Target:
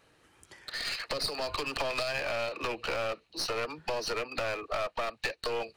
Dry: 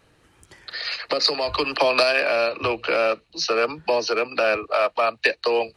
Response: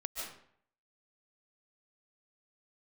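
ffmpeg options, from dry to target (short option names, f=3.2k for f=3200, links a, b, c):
-af "lowshelf=f=220:g=-7.5,acompressor=threshold=-24dB:ratio=4,aeval=exprs='clip(val(0),-1,0.0282)':c=same,volume=-3.5dB"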